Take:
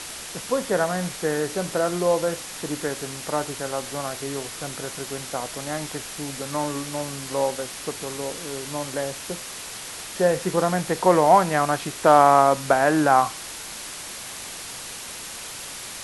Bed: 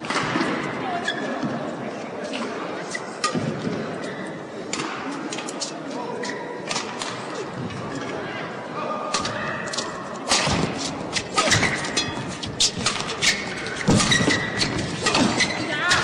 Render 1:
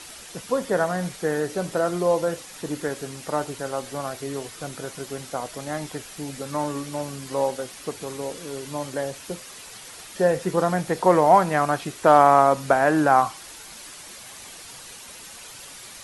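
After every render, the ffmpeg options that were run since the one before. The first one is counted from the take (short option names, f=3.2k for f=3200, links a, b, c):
-af "afftdn=nr=8:nf=-36"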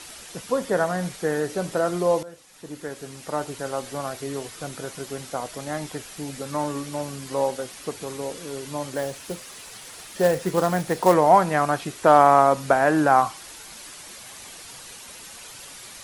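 -filter_complex "[0:a]asettb=1/sr,asplit=3[a][b][c];[a]atrim=end=8.954[d];[b]atrim=start=8.95:end=11.14,asetpts=PTS-STARTPTS,afade=t=in:d=0.004:c=qsin,afade=t=out:st=2.186:d=0.004:c=qsin,acrusher=bits=4:mode=log:mix=0:aa=0.000001[e];[c]atrim=start=11.136[f];[d][e]acrossfade=d=0.004:c1=hsin:c2=qsin[g];[g][f]acrossfade=d=0.004:c1=qsin:c2=hsin,asplit=2[h][i];[h]atrim=end=2.23,asetpts=PTS-STARTPTS,afade=t=out:st=2.226:d=0.004:c=hsin:silence=0.125893[j];[i]atrim=start=2.23,asetpts=PTS-STARTPTS,afade=t=in:d=1.45:silence=0.125893[k];[j][k]concat=n=2:v=0:a=1"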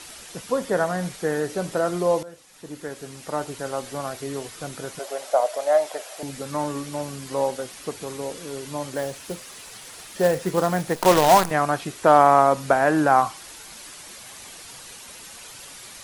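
-filter_complex "[0:a]asettb=1/sr,asplit=3[a][b][c];[a]atrim=end=4.994[d];[b]atrim=start=4.99:end=6.23,asetpts=PTS-STARTPTS,afade=t=in:d=0.004:c=qsin,afade=t=out:st=1.236:d=0.004:c=qsin,highpass=f=610:t=q:w=6.5[e];[c]atrim=start=6.226[f];[d][e]acrossfade=d=0.004:c1=hsin:c2=qsin[g];[g][f]acrossfade=d=0.004:c1=qsin:c2=hsin,asettb=1/sr,asplit=3[h][i][j];[h]atrim=end=10.954[k];[i]atrim=start=10.95:end=11.51,asetpts=PTS-STARTPTS,afade=t=in:d=0.004:c=qsin,afade=t=out:st=0.556:d=0.004:c=qsin,acrusher=bits=4:dc=4:mix=0:aa=0.000001[l];[j]atrim=start=11.506[m];[k][l]acrossfade=d=0.004:c1=hsin:c2=qsin[n];[n][m]acrossfade=d=0.004:c1=qsin:c2=hsin"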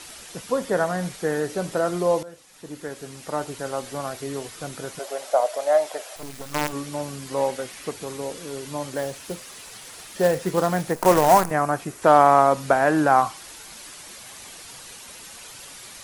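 -filter_complex "[0:a]asettb=1/sr,asplit=3[a][b][c];[a]atrim=end=6.164[d];[b]atrim=start=6.16:end=6.73,asetpts=PTS-STARTPTS,afade=t=in:d=0.004:c=qsin,afade=t=out:st=0.566:d=0.004:c=qsin,acrusher=bits=4:dc=4:mix=0:aa=0.000001[e];[c]atrim=start=6.726[f];[d][e]acrossfade=d=0.004:c1=hsin:c2=qsin[g];[g][f]acrossfade=d=0.004:c1=qsin:c2=hsin,asettb=1/sr,asplit=3[h][i][j];[h]atrim=end=7.374[k];[i]atrim=start=7.37:end=7.91,asetpts=PTS-STARTPTS,afade=t=in:d=0.004:c=qsin,afade=t=out:st=0.536:d=0.004:c=qsin,equalizer=f=2.1k:t=o:w=0.77:g=5[l];[j]atrim=start=7.906[m];[k][l]acrossfade=d=0.004:c1=hsin:c2=qsin[n];[n][m]acrossfade=d=0.004:c1=qsin:c2=hsin,asettb=1/sr,asplit=3[o][p][q];[o]atrim=end=10.914[r];[p]atrim=start=10.91:end=12.02,asetpts=PTS-STARTPTS,afade=t=in:d=0.004:c=qsin,afade=t=out:st=1.106:d=0.004:c=qsin,equalizer=f=3.6k:w=1.2:g=-9[s];[q]atrim=start=12.016[t];[r][s]acrossfade=d=0.004:c1=hsin:c2=qsin[u];[u][t]acrossfade=d=0.004:c1=qsin:c2=hsin"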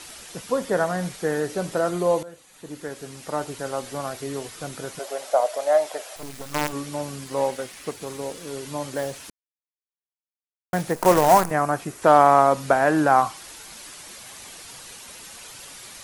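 -filter_complex "[0:a]asettb=1/sr,asplit=3[a][b][c];[a]atrim=end=1.904[d];[b]atrim=start=1.9:end=2.69,asetpts=PTS-STARTPTS,afade=t=in:d=0.004:c=qsin,afade=t=out:st=0.786:d=0.004:c=qsin,bandreject=f=5.3k:w=6.7[e];[c]atrim=start=2.686[f];[d][e]acrossfade=d=0.004:c1=hsin:c2=qsin[g];[g][f]acrossfade=d=0.004:c1=qsin:c2=hsin,asettb=1/sr,asplit=3[h][i][j];[h]atrim=end=7.244[k];[i]atrim=start=7.24:end=8.47,asetpts=PTS-STARTPTS,afade=t=in:d=0.004:c=qsin,afade=t=out:st=1.226:d=0.004:c=qsin,aeval=exprs='sgn(val(0))*max(abs(val(0))-0.00251,0)':c=same[l];[j]atrim=start=8.466[m];[k][l]acrossfade=d=0.004:c1=hsin:c2=qsin[n];[n][m]acrossfade=d=0.004:c1=qsin:c2=hsin,asplit=3[o][p][q];[o]atrim=end=9.3,asetpts=PTS-STARTPTS,afade=t=out:st=9.296:d=0.004:c=hsin[r];[p]atrim=start=9.3:end=10.73,asetpts=PTS-STARTPTS,volume=0[s];[q]atrim=start=10.73,asetpts=PTS-STARTPTS,afade=t=in:d=0.004:c=hsin[t];[r][s][t]concat=n=3:v=0:a=1"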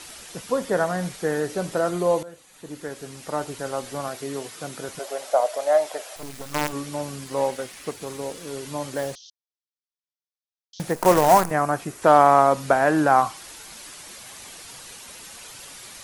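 -filter_complex "[0:a]asettb=1/sr,asplit=3[a][b][c];[a]atrim=end=4.084[d];[b]atrim=start=4.08:end=4.89,asetpts=PTS-STARTPTS,afade=t=in:d=0.004:c=qsin,afade=t=out:st=0.806:d=0.004:c=qsin,highpass=130[e];[c]atrim=start=4.886[f];[d][e]acrossfade=d=0.004:c1=hsin:c2=qsin[g];[g][f]acrossfade=d=0.004:c1=qsin:c2=hsin,asettb=1/sr,asplit=3[h][i][j];[h]atrim=end=9.154[k];[i]atrim=start=9.15:end=10.8,asetpts=PTS-STARTPTS,afade=t=in:d=0.004:c=qsin,afade=t=out:st=1.646:d=0.004:c=qsin,asuperpass=centerf=4500:order=12:qfactor=1.4[l];[j]atrim=start=10.796[m];[k][l]acrossfade=d=0.004:c1=hsin:c2=qsin[n];[n][m]acrossfade=d=0.004:c1=qsin:c2=hsin"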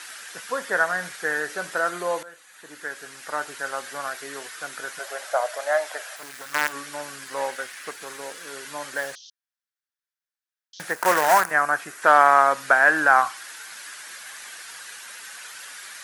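-af "highpass=f=1k:p=1,equalizer=f=1.6k:w=2:g=12.5"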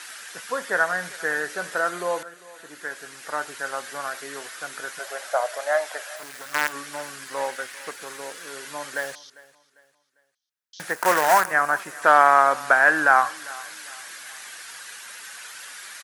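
-af "aecho=1:1:399|798|1197:0.0891|0.033|0.0122"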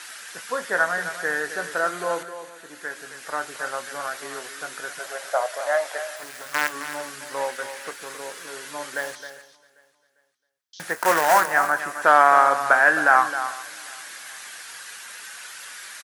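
-filter_complex "[0:a]asplit=2[a][b];[b]adelay=24,volume=-13.5dB[c];[a][c]amix=inputs=2:normalize=0,asplit=2[d][e];[e]aecho=0:1:265:0.282[f];[d][f]amix=inputs=2:normalize=0"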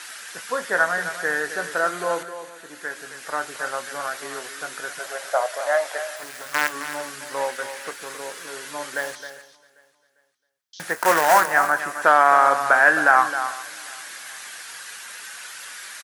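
-af "volume=1.5dB,alimiter=limit=-3dB:level=0:latency=1"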